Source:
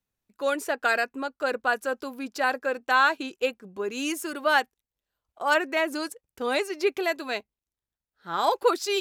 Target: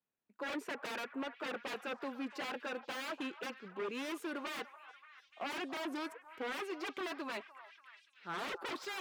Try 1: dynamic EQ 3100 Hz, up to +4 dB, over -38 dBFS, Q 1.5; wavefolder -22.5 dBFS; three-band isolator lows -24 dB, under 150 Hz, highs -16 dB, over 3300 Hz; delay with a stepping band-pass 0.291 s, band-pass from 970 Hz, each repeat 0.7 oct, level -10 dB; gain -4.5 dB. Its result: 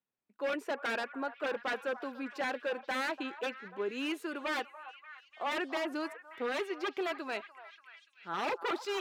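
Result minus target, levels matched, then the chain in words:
wavefolder: distortion -9 dB
dynamic EQ 3100 Hz, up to +4 dB, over -38 dBFS, Q 1.5; wavefolder -28.5 dBFS; three-band isolator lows -24 dB, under 150 Hz, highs -16 dB, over 3300 Hz; delay with a stepping band-pass 0.291 s, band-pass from 970 Hz, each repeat 0.7 oct, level -10 dB; gain -4.5 dB

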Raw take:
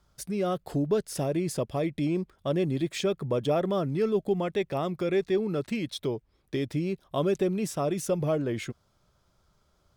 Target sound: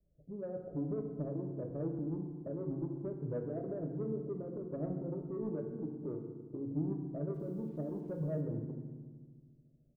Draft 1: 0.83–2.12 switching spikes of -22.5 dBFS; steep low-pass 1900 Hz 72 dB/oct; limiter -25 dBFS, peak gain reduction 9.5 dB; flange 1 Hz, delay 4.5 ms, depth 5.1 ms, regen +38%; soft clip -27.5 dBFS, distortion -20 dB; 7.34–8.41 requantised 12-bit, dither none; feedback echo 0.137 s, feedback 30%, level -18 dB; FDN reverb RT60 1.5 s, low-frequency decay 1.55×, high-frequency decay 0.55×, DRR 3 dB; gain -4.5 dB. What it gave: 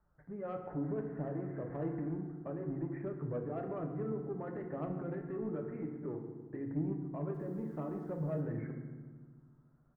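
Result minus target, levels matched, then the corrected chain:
2000 Hz band +11.0 dB
0.83–2.12 switching spikes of -22.5 dBFS; steep low-pass 640 Hz 72 dB/oct; limiter -25 dBFS, peak gain reduction 9 dB; flange 1 Hz, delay 4.5 ms, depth 5.1 ms, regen +38%; soft clip -27.5 dBFS, distortion -20 dB; 7.34–8.41 requantised 12-bit, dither none; feedback echo 0.137 s, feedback 30%, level -18 dB; FDN reverb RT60 1.5 s, low-frequency decay 1.55×, high-frequency decay 0.55×, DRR 3 dB; gain -4.5 dB

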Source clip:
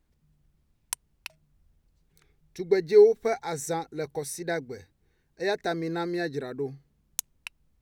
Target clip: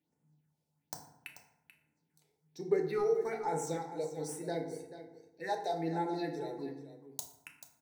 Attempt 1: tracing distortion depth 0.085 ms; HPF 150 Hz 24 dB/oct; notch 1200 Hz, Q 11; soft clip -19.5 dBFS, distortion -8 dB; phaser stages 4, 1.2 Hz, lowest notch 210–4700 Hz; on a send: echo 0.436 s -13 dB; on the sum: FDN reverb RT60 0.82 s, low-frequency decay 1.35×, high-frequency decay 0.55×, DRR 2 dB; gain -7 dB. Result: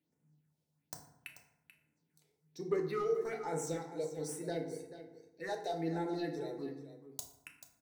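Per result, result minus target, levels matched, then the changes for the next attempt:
soft clip: distortion +11 dB; 1000 Hz band -3.0 dB
change: soft clip -10 dBFS, distortion -19 dB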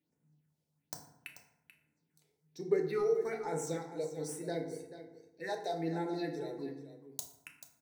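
1000 Hz band -4.5 dB
add after HPF: bell 840 Hz +7 dB 0.35 oct

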